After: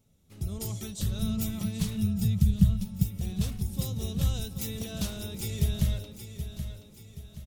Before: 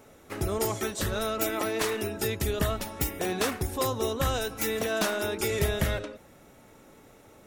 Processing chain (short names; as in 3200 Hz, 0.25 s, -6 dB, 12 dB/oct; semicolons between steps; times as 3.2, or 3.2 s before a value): 1.22–3.03 resonant low shelf 250 Hz +9 dB, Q 3; 3.7–4.25 notch 1000 Hz, Q 5.6; feedback echo 0.776 s, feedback 40%, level -10 dB; AGC gain up to 9.5 dB; EQ curve 190 Hz 0 dB, 300 Hz -16 dB, 1700 Hz -23 dB, 3400 Hz -8 dB; gain -6 dB